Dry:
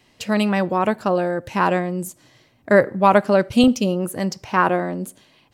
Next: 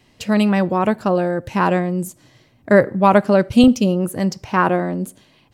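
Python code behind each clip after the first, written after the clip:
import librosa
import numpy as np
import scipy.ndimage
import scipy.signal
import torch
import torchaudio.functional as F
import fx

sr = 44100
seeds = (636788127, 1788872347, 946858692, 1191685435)

y = fx.low_shelf(x, sr, hz=280.0, db=6.5)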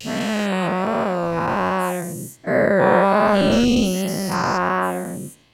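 y = fx.spec_dilate(x, sr, span_ms=480)
y = fx.vibrato(y, sr, rate_hz=1.3, depth_cents=69.0)
y = F.gain(torch.from_numpy(y), -9.5).numpy()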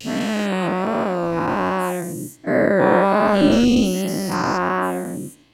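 y = fx.peak_eq(x, sr, hz=300.0, db=11.5, octaves=0.32)
y = F.gain(torch.from_numpy(y), -1.0).numpy()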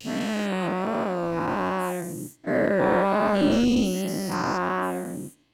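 y = fx.leveller(x, sr, passes=1)
y = F.gain(torch.from_numpy(y), -9.0).numpy()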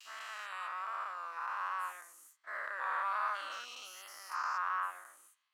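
y = fx.ladder_highpass(x, sr, hz=1100.0, resonance_pct=65)
y = F.gain(torch.from_numpy(y), -3.0).numpy()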